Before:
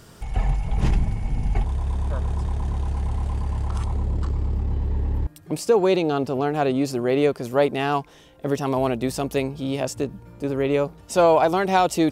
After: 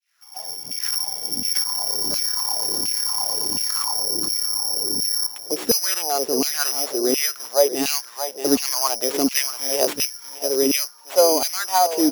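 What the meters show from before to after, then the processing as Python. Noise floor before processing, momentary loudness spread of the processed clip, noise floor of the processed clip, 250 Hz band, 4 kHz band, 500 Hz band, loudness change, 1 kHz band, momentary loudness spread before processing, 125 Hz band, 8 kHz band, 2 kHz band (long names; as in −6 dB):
−48 dBFS, 5 LU, −41 dBFS, −1.5 dB, +15.5 dB, −1.0 dB, +3.5 dB, −1.5 dB, 9 LU, −23.5 dB, +18.5 dB, +0.5 dB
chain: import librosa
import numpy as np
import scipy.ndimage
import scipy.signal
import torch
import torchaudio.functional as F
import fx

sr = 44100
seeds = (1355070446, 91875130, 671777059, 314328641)

p1 = fx.fade_in_head(x, sr, length_s=2.09)
p2 = (np.kron(p1[::8], np.eye(8)[0]) * 8)[:len(p1)]
p3 = p2 + fx.echo_single(p2, sr, ms=628, db=-12.5, dry=0)
p4 = fx.filter_lfo_highpass(p3, sr, shape='saw_down', hz=1.4, low_hz=240.0, high_hz=2700.0, q=3.9)
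p5 = fx.high_shelf(p4, sr, hz=5000.0, db=-10.0)
p6 = fx.rider(p5, sr, range_db=4, speed_s=0.5)
y = p6 * librosa.db_to_amplitude(-4.0)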